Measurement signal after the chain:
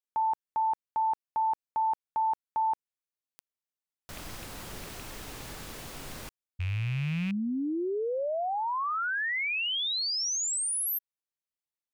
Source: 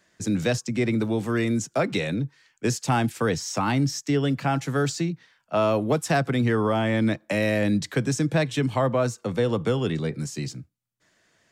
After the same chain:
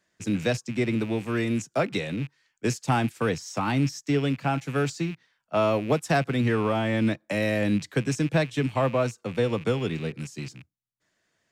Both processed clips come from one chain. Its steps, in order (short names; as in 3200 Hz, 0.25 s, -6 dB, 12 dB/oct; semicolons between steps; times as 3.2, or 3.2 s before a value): rattling part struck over -34 dBFS, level -28 dBFS; upward expander 1.5:1, over -36 dBFS